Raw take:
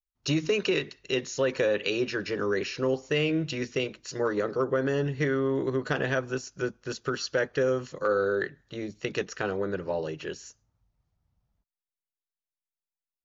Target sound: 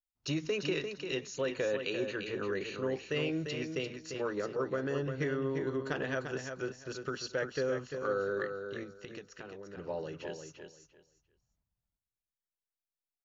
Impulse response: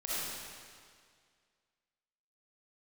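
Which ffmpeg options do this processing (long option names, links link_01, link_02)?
-filter_complex "[0:a]asettb=1/sr,asplit=3[link_01][link_02][link_03];[link_01]atrim=end=1.364[link_04];[link_02]atrim=start=1.36:end=2.92,asetpts=PTS-STARTPTS,afade=type=in:duration=0.004:curve=qsin,afade=type=out:start_time=1.556:duration=0.004:curve=qsin,asuperstop=centerf=5300:order=4:qfactor=3.9[link_05];[link_03]atrim=start=2.916[link_06];[link_04][link_05]acrossfade=duration=0.004:curve1=hsin:curve2=qsin[link_07];[link_07][link_06]acrossfade=duration=0.004:curve1=qsin:curve2=hsin,asettb=1/sr,asplit=3[link_08][link_09][link_10];[link_08]atrim=end=8.834[link_11];[link_09]atrim=start=8.83:end=9.77,asetpts=PTS-STARTPTS,afade=type=in:duration=0.004:curve=qsin,afade=type=out:start_time=0.936:duration=0.004:curve=qsin,acompressor=threshold=-38dB:ratio=5[link_12];[link_10]atrim=start=9.766[link_13];[link_11][link_12]acrossfade=duration=0.004:curve1=hsin:curve2=qsin[link_14];[link_14][link_13]acrossfade=duration=0.004:curve1=qsin:curve2=hsin,asplit=2[link_15][link_16];[link_16]aecho=0:1:346|692|1038:0.447|0.0893|0.0179[link_17];[link_15][link_17]amix=inputs=2:normalize=0,volume=-7.5dB"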